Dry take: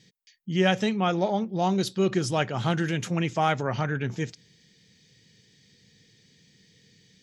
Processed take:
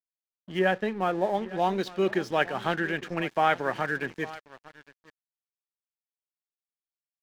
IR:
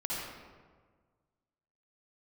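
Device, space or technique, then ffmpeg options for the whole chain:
pocket radio on a weak battery: -filter_complex "[0:a]asettb=1/sr,asplit=3[link_01][link_02][link_03];[link_01]atrim=end=0.594[link_04];[link_02]atrim=start=0.59:end=1.35,asetpts=PTS-STARTPTS,afade=type=in:duration=0.004:curve=qsin,afade=type=out:start_time=0.756:duration=0.004:curve=qsin,lowpass=frequency=1200:poles=1[link_05];[link_03]atrim=start=1.346[link_06];[link_04][link_05]acrossfade=duration=0.004:curve1=hsin:curve2=qsin[link_07];[link_07][link_06]acrossfade=duration=0.004:curve1=qsin:curve2=hsin,highpass=300,lowpass=3200,aecho=1:1:856:0.15,aeval=exprs='sgn(val(0))*max(abs(val(0))-0.00447,0)':channel_layout=same,equalizer=frequency=1700:width_type=o:width=0.23:gain=7,asplit=3[link_08][link_09][link_10];[link_08]afade=type=out:start_time=2.77:duration=0.02[link_11];[link_09]adynamicequalizer=threshold=0.00631:dfrequency=3300:dqfactor=0.7:tfrequency=3300:tqfactor=0.7:attack=5:release=100:ratio=0.375:range=2.5:mode=cutabove:tftype=highshelf,afade=type=in:start_time=2.77:duration=0.02,afade=type=out:start_time=3.29:duration=0.02[link_12];[link_10]afade=type=in:start_time=3.29:duration=0.02[link_13];[link_11][link_12][link_13]amix=inputs=3:normalize=0,volume=1.5dB"

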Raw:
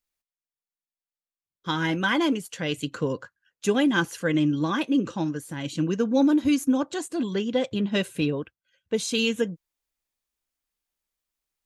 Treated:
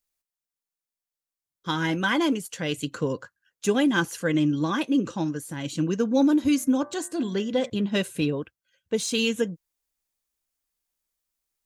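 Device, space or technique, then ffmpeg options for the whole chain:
exciter from parts: -filter_complex "[0:a]asettb=1/sr,asplit=3[link_01][link_02][link_03];[link_01]atrim=end=6.344[link_04];[link_02]atrim=start=6.34:end=7.7,asetpts=PTS-STARTPTS,afade=type=in:duration=0.004:curve=qsin,afade=type=out:start_time=1.356:duration=0.004:curve=qsin,bandreject=frequency=117.2:width_type=h:width=4,bandreject=frequency=234.4:width_type=h:width=4,bandreject=frequency=351.6:width_type=h:width=4,bandreject=frequency=468.8:width_type=h:width=4,bandreject=frequency=586:width_type=h:width=4,bandreject=frequency=703.2:width_type=h:width=4,bandreject=frequency=820.4:width_type=h:width=4,bandreject=frequency=937.6:width_type=h:width=4,bandreject=frequency=1054.8:width_type=h:width=4,bandreject=frequency=1172:width_type=h:width=4,bandreject=frequency=1289.2:width_type=h:width=4,bandreject=frequency=1406.4:width_type=h:width=4,bandreject=frequency=1523.6:width_type=h:width=4,bandreject=frequency=1640.8:width_type=h:width=4,bandreject=frequency=1758:width_type=h:width=4,bandreject=frequency=1875.2:width_type=h:width=4,bandreject=frequency=1992.4:width_type=h:width=4,bandreject=frequency=2109.6:width_type=h:width=4[link_05];[link_03]atrim=start=7.696[link_06];[link_04][link_05]acrossfade=duration=0.004:curve1=hsin:curve2=qsin[link_07];[link_07][link_06]acrossfade=duration=0.004:curve1=qsin:curve2=hsin,asplit=2[link_08][link_09];[link_09]highpass=4200,asoftclip=type=tanh:threshold=-35.5dB,volume=-4dB[link_10];[link_08][link_10]amix=inputs=2:normalize=0"

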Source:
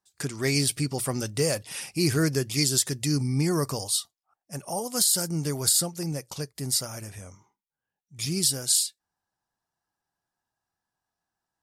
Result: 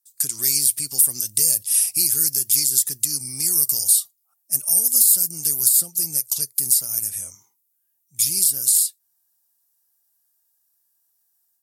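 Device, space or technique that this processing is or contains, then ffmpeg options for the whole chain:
FM broadcast chain: -filter_complex "[0:a]highpass=53,dynaudnorm=framelen=150:gausssize=3:maxgain=7.5dB,acrossover=split=420|2900[link_01][link_02][link_03];[link_01]acompressor=threshold=-26dB:ratio=4[link_04];[link_02]acompressor=threshold=-37dB:ratio=4[link_05];[link_03]acompressor=threshold=-26dB:ratio=4[link_06];[link_04][link_05][link_06]amix=inputs=3:normalize=0,aemphasis=mode=production:type=75fm,alimiter=limit=-4dB:level=0:latency=1:release=165,asoftclip=type=hard:threshold=-5.5dB,lowpass=frequency=15000:width=0.5412,lowpass=frequency=15000:width=1.3066,aemphasis=mode=production:type=75fm,volume=-12.5dB"

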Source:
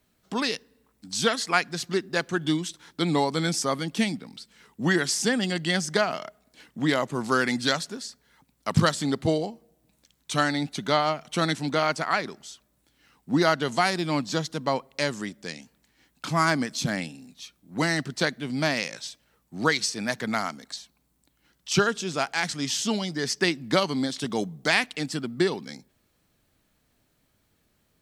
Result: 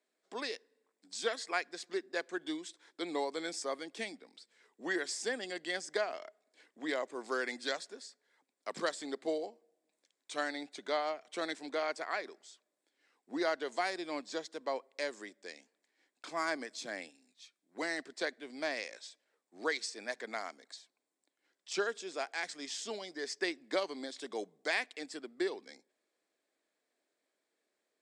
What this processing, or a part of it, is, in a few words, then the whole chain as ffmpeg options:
phone speaker on a table: -filter_complex "[0:a]highpass=frequency=350:width=0.5412,highpass=frequency=350:width=1.3066,equalizer=frequency=890:width_type=q:width=4:gain=-5,equalizer=frequency=1300:width_type=q:width=4:gain=-7,equalizer=frequency=2900:width_type=q:width=4:gain=-8,equalizer=frequency=4200:width_type=q:width=4:gain=-4,equalizer=frequency=6000:width_type=q:width=4:gain=-7,lowpass=frequency=8200:width=0.5412,lowpass=frequency=8200:width=1.3066,asettb=1/sr,asplit=3[link_01][link_02][link_03];[link_01]atrim=end=17.104[link_04];[link_02]atrim=start=17.1:end=17.75,asetpts=PTS-STARTPTS,afade=type=in:duration=0.004:curve=qsin,afade=type=out:start_time=0.646:duration=0.004:curve=qsin,equalizer=frequency=480:width=0.57:gain=-8[link_05];[link_03]atrim=start=17.746[link_06];[link_04][link_05]acrossfade=duration=0.004:curve1=hsin:curve2=qsin[link_07];[link_07][link_06]acrossfade=duration=0.004:curve1=qsin:curve2=hsin,volume=-8dB"

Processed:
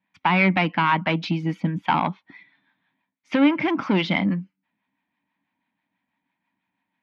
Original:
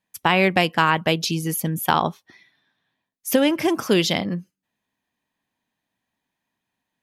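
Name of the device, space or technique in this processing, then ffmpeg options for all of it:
guitar amplifier with harmonic tremolo: -filter_complex "[0:a]acrossover=split=620[link_01][link_02];[link_01]aeval=exprs='val(0)*(1-0.5/2+0.5/2*cos(2*PI*6.1*n/s))':channel_layout=same[link_03];[link_02]aeval=exprs='val(0)*(1-0.5/2-0.5/2*cos(2*PI*6.1*n/s))':channel_layout=same[link_04];[link_03][link_04]amix=inputs=2:normalize=0,asoftclip=type=tanh:threshold=-17.5dB,highpass=80,equalizer=frequency=190:width_type=q:width=4:gain=8,equalizer=frequency=280:width_type=q:width=4:gain=9,equalizer=frequency=430:width_type=q:width=4:gain=-7,equalizer=frequency=930:width_type=q:width=4:gain=8,equalizer=frequency=1400:width_type=q:width=4:gain=4,equalizer=frequency=2200:width_type=q:width=4:gain=10,lowpass=frequency=3700:width=0.5412,lowpass=frequency=3700:width=1.3066"

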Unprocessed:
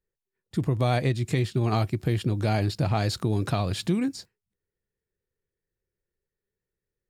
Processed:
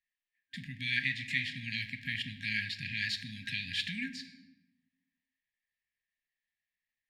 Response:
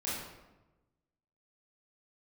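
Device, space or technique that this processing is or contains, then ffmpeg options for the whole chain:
saturated reverb return: -filter_complex "[0:a]equalizer=frequency=2200:width_type=o:width=1.8:gain=5.5,asplit=2[link_01][link_02];[1:a]atrim=start_sample=2205[link_03];[link_02][link_03]afir=irnorm=-1:irlink=0,asoftclip=type=tanh:threshold=-19.5dB,volume=-8.5dB[link_04];[link_01][link_04]amix=inputs=2:normalize=0,afftfilt=real='re*(1-between(b*sr/4096,270,1600))':imag='im*(1-between(b*sr/4096,270,1600))':win_size=4096:overlap=0.75,acrossover=split=420 4100:gain=0.0708 1 0.141[link_05][link_06][link_07];[link_05][link_06][link_07]amix=inputs=3:normalize=0"

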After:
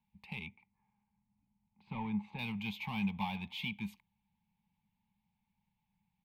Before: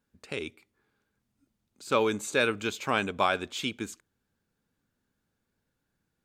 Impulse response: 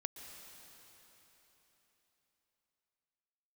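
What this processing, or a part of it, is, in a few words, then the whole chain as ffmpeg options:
one-band saturation: -filter_complex "[0:a]acrossover=split=360|4200[link_01][link_02][link_03];[link_02]asoftclip=type=tanh:threshold=-35.5dB[link_04];[link_01][link_04][link_03]amix=inputs=3:normalize=0,asettb=1/sr,asplit=3[link_05][link_06][link_07];[link_05]atrim=end=0.464[link_08];[link_06]atrim=start=0.46:end=2.39,asetpts=PTS-STARTPTS,afade=type=in:duration=0.004:curve=qsin,afade=type=out:start_time=1.926:duration=0.004:curve=qsin,lowpass=1700[link_09];[link_07]atrim=start=2.386[link_10];[link_08][link_09]acrossfade=duration=0.004:curve1=hsin:curve2=qsin[link_11];[link_11][link_10]acrossfade=duration=0.004:curve1=qsin:curve2=hsin,firequalizer=gain_entry='entry(130,0);entry(200,9);entry(280,-21);entry(610,-18);entry(860,11);entry(1400,-23);entry(2200,5);entry(7200,-25);entry(12000,-5)':delay=0.05:min_phase=1,volume=-3dB"

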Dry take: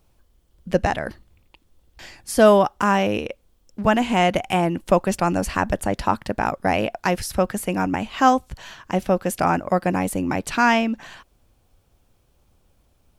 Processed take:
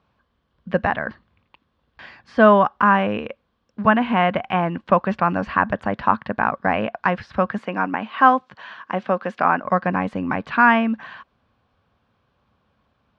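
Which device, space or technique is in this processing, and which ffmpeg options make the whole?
guitar cabinet: -filter_complex "[0:a]highpass=100,equalizer=frequency=220:width_type=q:width=4:gain=4,equalizer=frequency=340:width_type=q:width=4:gain=-6,equalizer=frequency=1100:width_type=q:width=4:gain=9,equalizer=frequency=1600:width_type=q:width=4:gain=7,lowpass=frequency=4100:width=0.5412,lowpass=frequency=4100:width=1.3066,asettb=1/sr,asplit=3[link_01][link_02][link_03];[link_01]atrim=end=7.584[link_04];[link_02]atrim=start=7.58:end=9.64,asetpts=PTS-STARTPTS,afade=type=in:duration=0.004:curve=qsin,afade=type=out:start_time=2.056:duration=0.004:curve=qsin,highpass=230[link_05];[link_03]atrim=start=9.636[link_06];[link_04][link_05]acrossfade=duration=0.004:curve1=hsin:curve2=qsin[link_07];[link_07][link_06]acrossfade=duration=0.004:curve1=qsin:curve2=hsin,acrossover=split=3400[link_08][link_09];[link_09]acompressor=threshold=-53dB:ratio=4:attack=1:release=60[link_10];[link_08][link_10]amix=inputs=2:normalize=0,volume=-1dB"

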